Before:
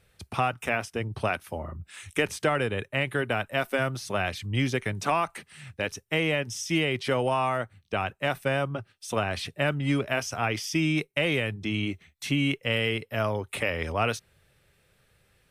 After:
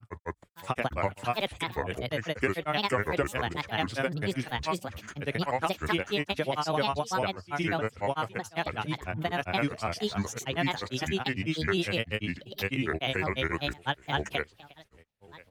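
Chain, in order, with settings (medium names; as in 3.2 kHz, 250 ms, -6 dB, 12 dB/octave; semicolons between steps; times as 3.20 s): delay 1036 ms -21 dB; granulator, spray 970 ms, pitch spread up and down by 7 st; trim -1.5 dB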